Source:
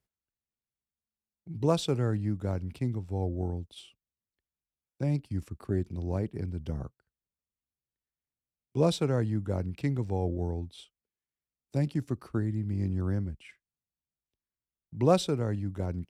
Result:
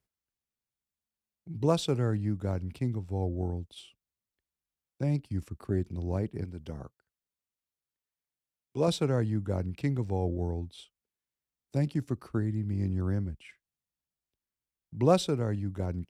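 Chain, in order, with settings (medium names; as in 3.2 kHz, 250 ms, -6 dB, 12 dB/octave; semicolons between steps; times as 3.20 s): 6.44–8.88 s: bass shelf 220 Hz -8.5 dB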